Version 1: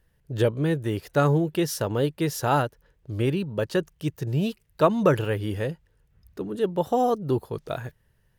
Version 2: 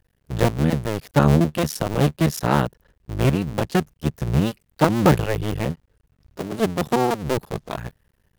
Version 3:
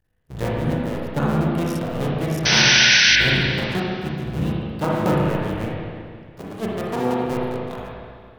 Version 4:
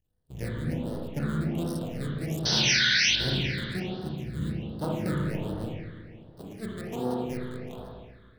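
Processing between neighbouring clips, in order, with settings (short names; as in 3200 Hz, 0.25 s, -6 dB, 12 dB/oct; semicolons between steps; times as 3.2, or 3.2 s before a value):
cycle switcher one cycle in 2, muted; dynamic EQ 150 Hz, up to +7 dB, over -41 dBFS, Q 1.2; gain +4 dB
painted sound noise, 2.45–3.16, 1400–6200 Hz -9 dBFS; spring tank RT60 2.1 s, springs 32/36/58 ms, chirp 55 ms, DRR -5 dB; gain -8.5 dB
phaser stages 8, 1.3 Hz, lowest notch 750–2300 Hz; high shelf 5000 Hz +6.5 dB; gain -8 dB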